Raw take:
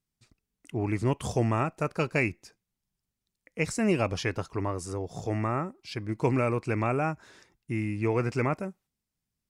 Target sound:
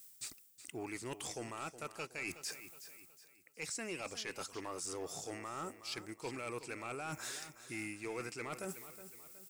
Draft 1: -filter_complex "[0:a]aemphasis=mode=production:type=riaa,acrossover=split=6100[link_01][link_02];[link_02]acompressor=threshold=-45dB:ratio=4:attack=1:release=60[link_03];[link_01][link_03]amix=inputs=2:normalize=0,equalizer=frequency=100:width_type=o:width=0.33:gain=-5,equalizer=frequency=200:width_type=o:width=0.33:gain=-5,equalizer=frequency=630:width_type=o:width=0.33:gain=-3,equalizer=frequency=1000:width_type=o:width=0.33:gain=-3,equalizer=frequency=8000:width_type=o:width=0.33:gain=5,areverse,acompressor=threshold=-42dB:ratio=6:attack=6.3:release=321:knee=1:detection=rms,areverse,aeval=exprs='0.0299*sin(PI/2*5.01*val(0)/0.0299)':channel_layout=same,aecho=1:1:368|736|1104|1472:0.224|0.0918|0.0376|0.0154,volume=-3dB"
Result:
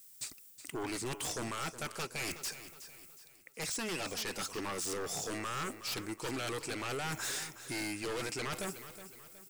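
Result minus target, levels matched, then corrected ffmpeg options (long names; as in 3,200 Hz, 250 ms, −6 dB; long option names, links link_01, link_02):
downward compressor: peak gain reduction −9.5 dB
-filter_complex "[0:a]aemphasis=mode=production:type=riaa,acrossover=split=6100[link_01][link_02];[link_02]acompressor=threshold=-45dB:ratio=4:attack=1:release=60[link_03];[link_01][link_03]amix=inputs=2:normalize=0,equalizer=frequency=100:width_type=o:width=0.33:gain=-5,equalizer=frequency=200:width_type=o:width=0.33:gain=-5,equalizer=frequency=630:width_type=o:width=0.33:gain=-3,equalizer=frequency=1000:width_type=o:width=0.33:gain=-3,equalizer=frequency=8000:width_type=o:width=0.33:gain=5,areverse,acompressor=threshold=-53.5dB:ratio=6:attack=6.3:release=321:knee=1:detection=rms,areverse,aeval=exprs='0.0299*sin(PI/2*5.01*val(0)/0.0299)':channel_layout=same,aecho=1:1:368|736|1104|1472:0.224|0.0918|0.0376|0.0154,volume=-3dB"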